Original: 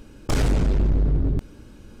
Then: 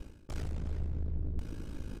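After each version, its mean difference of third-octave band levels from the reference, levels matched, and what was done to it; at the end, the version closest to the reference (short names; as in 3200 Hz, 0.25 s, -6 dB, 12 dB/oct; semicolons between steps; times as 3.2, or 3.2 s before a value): 7.0 dB: low shelf 98 Hz +6.5 dB; reverse; compressor 16:1, threshold -33 dBFS, peak gain reduction 21.5 dB; reverse; ring modulator 27 Hz; outdoor echo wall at 63 m, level -8 dB; gain +2.5 dB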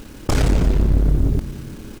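5.0 dB: in parallel at +1 dB: compressor 16:1, threshold -26 dBFS, peak gain reduction 9.5 dB; on the sum: AM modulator 34 Hz, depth 35%; bit-crush 8-bit; frequency-shifting echo 0.171 s, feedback 55%, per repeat -92 Hz, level -15.5 dB; gain +3 dB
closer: second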